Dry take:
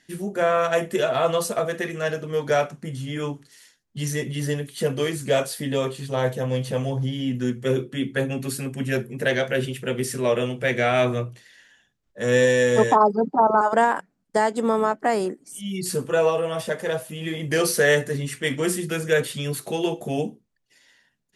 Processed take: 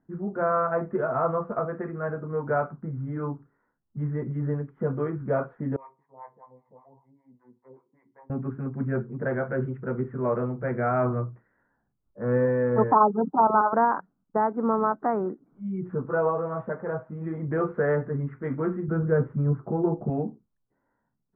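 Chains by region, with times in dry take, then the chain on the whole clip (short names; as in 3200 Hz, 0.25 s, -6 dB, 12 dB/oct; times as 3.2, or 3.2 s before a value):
5.76–8.3 double band-pass 1400 Hz, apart 1.1 oct + harmonic tremolo 5.1 Hz, depth 100%, crossover 580 Hz + feedback echo 60 ms, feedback 37%, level -22 dB
18.88–20.1 LPF 1500 Hz + low shelf 250 Hz +9 dB
whole clip: comb 0.9 ms, depth 36%; low-pass opened by the level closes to 980 Hz, open at -18 dBFS; elliptic low-pass 1500 Hz, stop band 70 dB; gain -2 dB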